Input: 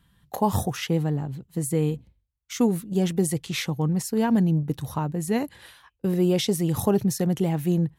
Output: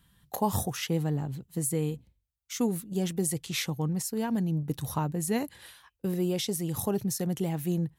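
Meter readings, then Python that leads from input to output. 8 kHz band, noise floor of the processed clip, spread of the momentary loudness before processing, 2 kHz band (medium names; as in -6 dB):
-0.5 dB, -78 dBFS, 8 LU, -4.5 dB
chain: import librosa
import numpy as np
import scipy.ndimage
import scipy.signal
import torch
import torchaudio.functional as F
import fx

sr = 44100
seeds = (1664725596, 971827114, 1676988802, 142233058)

y = fx.high_shelf(x, sr, hz=4500.0, db=7.5)
y = fx.rider(y, sr, range_db=5, speed_s=0.5)
y = F.gain(torch.from_numpy(y), -6.0).numpy()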